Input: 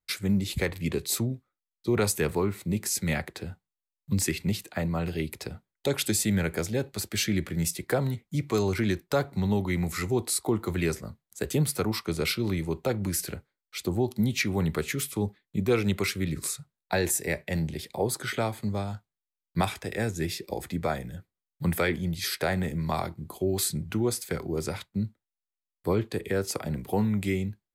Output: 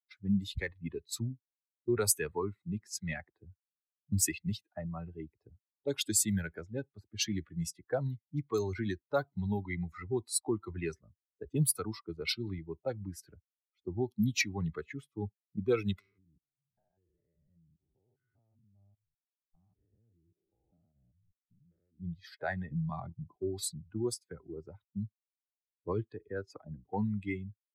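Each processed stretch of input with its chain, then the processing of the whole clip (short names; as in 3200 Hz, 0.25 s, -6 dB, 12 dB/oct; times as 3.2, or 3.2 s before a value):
15.99–22 stepped spectrum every 0.2 s + compressor 10:1, threshold -39 dBFS
22.71–23.36 bell 150 Hz +10 dB 1.8 oct + compressor 3:1, threshold -25 dBFS
whole clip: per-bin expansion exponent 2; low-pass opened by the level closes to 320 Hz, open at -26 dBFS; high shelf 5500 Hz +10.5 dB; gain -2 dB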